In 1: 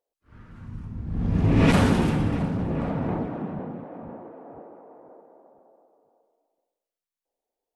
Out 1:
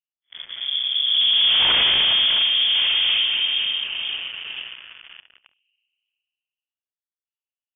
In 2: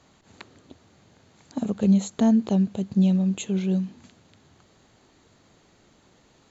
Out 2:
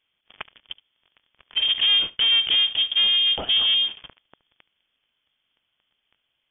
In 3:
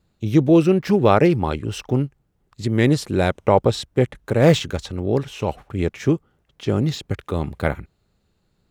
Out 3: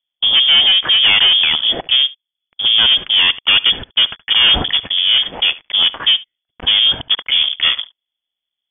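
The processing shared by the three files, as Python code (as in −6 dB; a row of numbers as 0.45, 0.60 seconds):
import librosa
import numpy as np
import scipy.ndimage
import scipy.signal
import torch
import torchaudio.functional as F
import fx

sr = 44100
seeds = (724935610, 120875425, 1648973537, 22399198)

y = fx.leveller(x, sr, passes=5)
y = y + 10.0 ** (-20.5 / 20.0) * np.pad(y, (int(72 * sr / 1000.0), 0))[:len(y)]
y = fx.freq_invert(y, sr, carrier_hz=3400)
y = F.gain(torch.from_numpy(y), -6.5).numpy()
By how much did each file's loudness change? +7.5, +5.0, +9.0 LU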